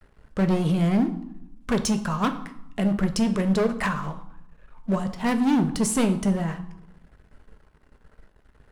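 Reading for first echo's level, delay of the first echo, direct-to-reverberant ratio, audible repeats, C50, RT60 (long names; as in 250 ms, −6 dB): no echo audible, no echo audible, 7.0 dB, no echo audible, 12.5 dB, 0.80 s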